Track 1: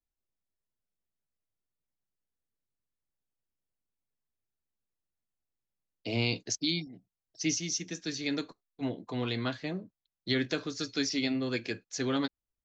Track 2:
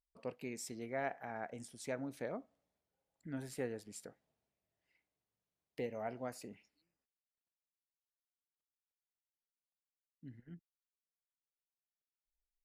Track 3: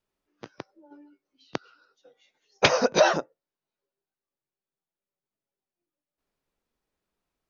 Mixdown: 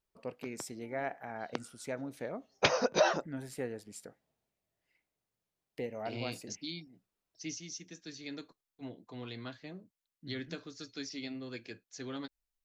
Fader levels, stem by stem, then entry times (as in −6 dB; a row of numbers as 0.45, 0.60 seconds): −11.0, +2.0, −7.5 decibels; 0.00, 0.00, 0.00 seconds